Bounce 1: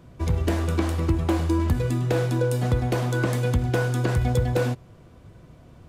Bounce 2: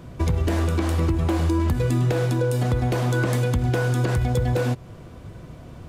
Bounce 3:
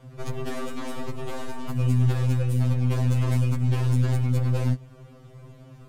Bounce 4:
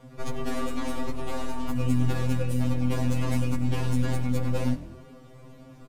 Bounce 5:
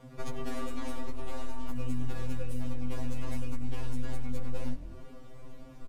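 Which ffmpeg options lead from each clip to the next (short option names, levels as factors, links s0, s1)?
-af "alimiter=limit=0.0841:level=0:latency=1:release=270,volume=2.51"
-af "aeval=exprs='0.211*(cos(1*acos(clip(val(0)/0.211,-1,1)))-cos(1*PI/2))+0.0335*(cos(4*acos(clip(val(0)/0.211,-1,1)))-cos(4*PI/2))':c=same,afftfilt=real='re*2.45*eq(mod(b,6),0)':imag='im*2.45*eq(mod(b,6),0)':win_size=2048:overlap=0.75,volume=0.631"
-filter_complex "[0:a]aecho=1:1:4.2:0.52,asplit=5[s0][s1][s2][s3][s4];[s1]adelay=94,afreqshift=41,volume=0.126[s5];[s2]adelay=188,afreqshift=82,volume=0.0668[s6];[s3]adelay=282,afreqshift=123,volume=0.0355[s7];[s4]adelay=376,afreqshift=164,volume=0.0188[s8];[s0][s5][s6][s7][s8]amix=inputs=5:normalize=0"
-af "asubboost=boost=5:cutoff=53,acompressor=threshold=0.0447:ratio=2,volume=0.794"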